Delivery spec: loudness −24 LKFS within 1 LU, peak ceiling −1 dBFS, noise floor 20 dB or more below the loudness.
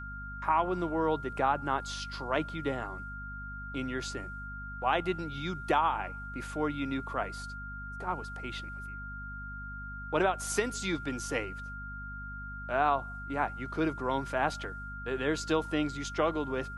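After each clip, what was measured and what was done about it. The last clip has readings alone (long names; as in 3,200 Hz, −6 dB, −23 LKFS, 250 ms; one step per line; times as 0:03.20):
mains hum 50 Hz; hum harmonics up to 250 Hz; level of the hum −41 dBFS; interfering tone 1,400 Hz; level of the tone −41 dBFS; integrated loudness −33.5 LKFS; sample peak −13.5 dBFS; target loudness −24.0 LKFS
→ hum removal 50 Hz, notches 5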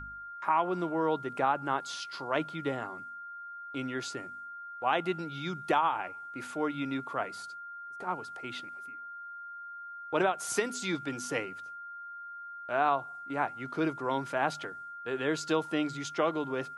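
mains hum none found; interfering tone 1,400 Hz; level of the tone −41 dBFS
→ notch filter 1,400 Hz, Q 30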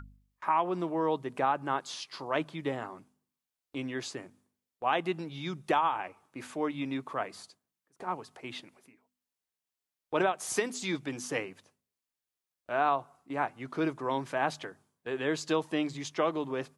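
interfering tone none found; integrated loudness −33.0 LKFS; sample peak −14.5 dBFS; target loudness −24.0 LKFS
→ level +9 dB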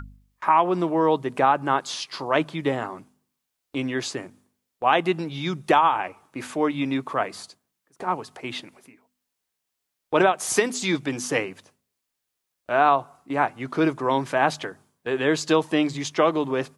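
integrated loudness −24.0 LKFS; sample peak −5.5 dBFS; background noise floor −81 dBFS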